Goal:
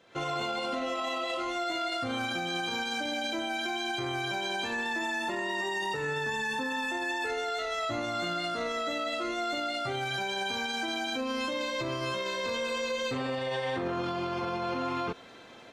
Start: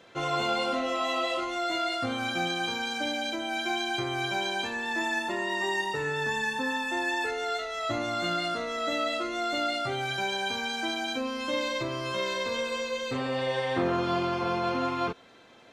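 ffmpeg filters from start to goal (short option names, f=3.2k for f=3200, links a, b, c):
-af "dynaudnorm=f=100:g=3:m=11.5dB,alimiter=limit=-17.5dB:level=0:latency=1:release=44,volume=-7dB"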